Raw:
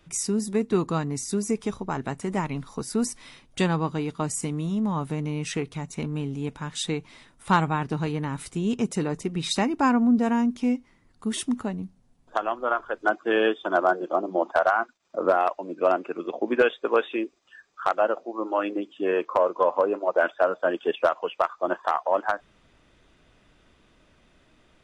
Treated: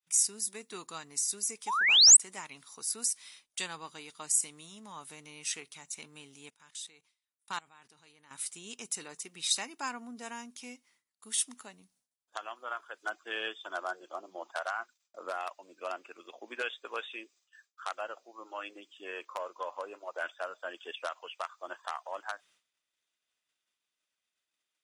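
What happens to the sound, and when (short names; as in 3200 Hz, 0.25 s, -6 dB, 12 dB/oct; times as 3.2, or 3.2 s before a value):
1.67–2.17 painted sound rise 800–8600 Hz -17 dBFS
6.5–8.31 level quantiser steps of 21 dB
whole clip: expander -48 dBFS; differentiator; gain +3 dB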